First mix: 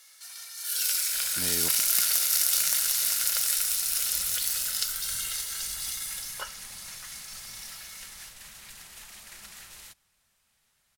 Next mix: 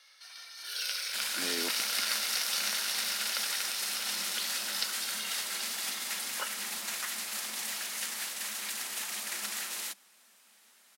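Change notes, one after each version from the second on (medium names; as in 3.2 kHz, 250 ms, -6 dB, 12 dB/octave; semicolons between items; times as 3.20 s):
first sound: add Savitzky-Golay filter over 15 samples; second sound +10.0 dB; master: add steep high-pass 200 Hz 72 dB/octave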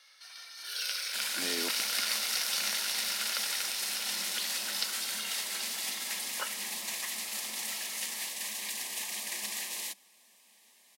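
second sound: add Butterworth band-stop 1.4 kHz, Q 2.6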